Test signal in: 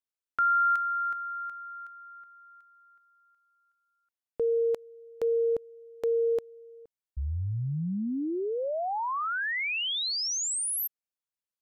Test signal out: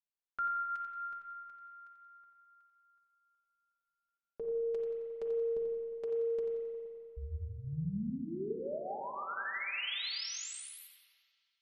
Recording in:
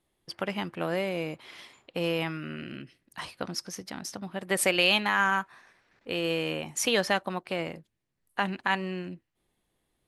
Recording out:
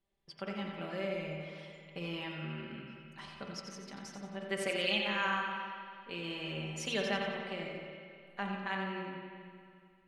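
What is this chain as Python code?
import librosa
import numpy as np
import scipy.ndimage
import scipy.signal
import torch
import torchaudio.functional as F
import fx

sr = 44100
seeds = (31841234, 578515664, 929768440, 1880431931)

p1 = scipy.signal.sosfilt(scipy.signal.butter(2, 6400.0, 'lowpass', fs=sr, output='sos'), x)
p2 = fx.low_shelf(p1, sr, hz=83.0, db=8.0)
p3 = fx.hum_notches(p2, sr, base_hz=60, count=7)
p4 = p3 + 0.73 * np.pad(p3, (int(5.1 * sr / 1000.0), 0))[:len(p3)]
p5 = fx.dynamic_eq(p4, sr, hz=950.0, q=1.4, threshold_db=-40.0, ratio=4.0, max_db=-5)
p6 = fx.comb_fb(p5, sr, f0_hz=89.0, decay_s=0.62, harmonics='odd', damping=0.3, mix_pct=60)
p7 = p6 + fx.echo_feedback(p6, sr, ms=89, feedback_pct=45, wet_db=-7.5, dry=0)
p8 = fx.rev_spring(p7, sr, rt60_s=2.2, pass_ms=(39, 51, 58), chirp_ms=50, drr_db=2.0)
y = F.gain(torch.from_numpy(p8), -4.5).numpy()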